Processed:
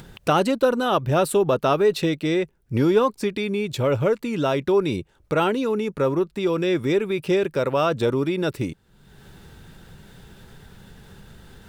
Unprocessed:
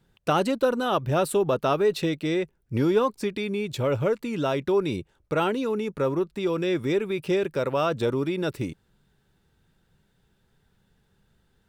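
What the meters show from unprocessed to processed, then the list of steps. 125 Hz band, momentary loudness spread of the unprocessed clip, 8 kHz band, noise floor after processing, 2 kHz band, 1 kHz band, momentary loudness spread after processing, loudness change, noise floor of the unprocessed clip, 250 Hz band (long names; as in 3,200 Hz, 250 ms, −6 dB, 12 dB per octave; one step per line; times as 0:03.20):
+3.5 dB, 6 LU, can't be measured, −61 dBFS, +3.5 dB, +3.5 dB, 6 LU, +3.5 dB, −68 dBFS, +3.5 dB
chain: upward compression, threshold −33 dBFS
level +3.5 dB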